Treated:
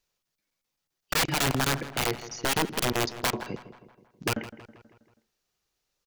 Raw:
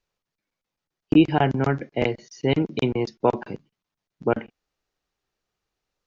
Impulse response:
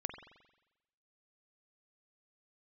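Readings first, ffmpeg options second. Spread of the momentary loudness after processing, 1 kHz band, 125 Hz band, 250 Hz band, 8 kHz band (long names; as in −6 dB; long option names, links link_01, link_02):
10 LU, −3.5 dB, −7.0 dB, −11.5 dB, can't be measured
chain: -filter_complex "[0:a]highshelf=frequency=3600:gain=11.5,aeval=exprs='(mod(6.31*val(0)+1,2)-1)/6.31':channel_layout=same,asplit=2[link_01][link_02];[link_02]adelay=161,lowpass=frequency=3200:poles=1,volume=-14dB,asplit=2[link_03][link_04];[link_04]adelay=161,lowpass=frequency=3200:poles=1,volume=0.54,asplit=2[link_05][link_06];[link_06]adelay=161,lowpass=frequency=3200:poles=1,volume=0.54,asplit=2[link_07][link_08];[link_08]adelay=161,lowpass=frequency=3200:poles=1,volume=0.54,asplit=2[link_09][link_10];[link_10]adelay=161,lowpass=frequency=3200:poles=1,volume=0.54[link_11];[link_03][link_05][link_07][link_09][link_11]amix=inputs=5:normalize=0[link_12];[link_01][link_12]amix=inputs=2:normalize=0,volume=-2.5dB"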